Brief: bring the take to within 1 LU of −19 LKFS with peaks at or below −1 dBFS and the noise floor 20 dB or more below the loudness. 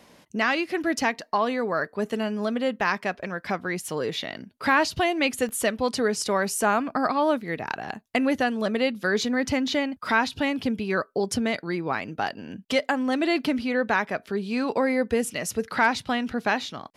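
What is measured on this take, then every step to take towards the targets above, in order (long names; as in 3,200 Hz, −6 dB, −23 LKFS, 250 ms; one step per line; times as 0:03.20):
number of dropouts 2; longest dropout 1.1 ms; integrated loudness −25.5 LKFS; sample peak −8.5 dBFS; target loudness −19.0 LKFS
→ repair the gap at 0:02.81/0:05.49, 1.1 ms
level +6.5 dB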